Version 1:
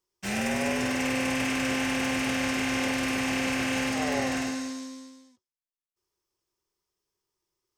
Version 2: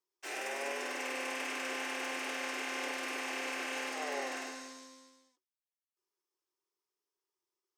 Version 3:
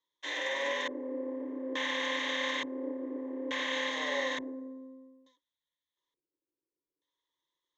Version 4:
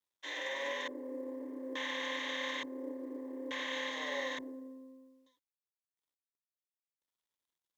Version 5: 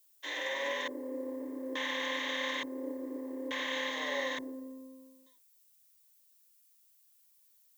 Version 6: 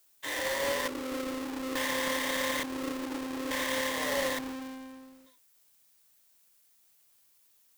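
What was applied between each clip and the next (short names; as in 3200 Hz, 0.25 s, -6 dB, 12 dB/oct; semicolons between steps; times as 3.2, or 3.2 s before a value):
rippled Chebyshev high-pass 280 Hz, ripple 3 dB; gain -6 dB
LFO low-pass square 0.57 Hz 370–3800 Hz; ripple EQ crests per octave 1.1, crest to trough 16 dB
companded quantiser 8-bit; gain -5 dB
added noise violet -69 dBFS; gain +3 dB
half-waves squared off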